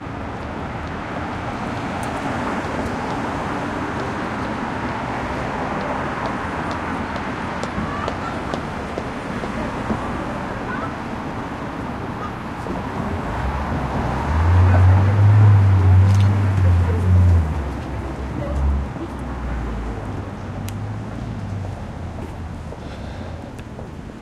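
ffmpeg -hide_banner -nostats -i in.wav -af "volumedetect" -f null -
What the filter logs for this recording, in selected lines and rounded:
mean_volume: -20.4 dB
max_volume: -3.3 dB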